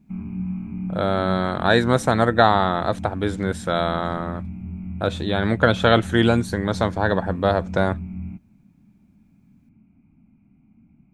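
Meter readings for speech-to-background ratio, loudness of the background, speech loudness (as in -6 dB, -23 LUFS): 12.0 dB, -33.0 LUFS, -21.0 LUFS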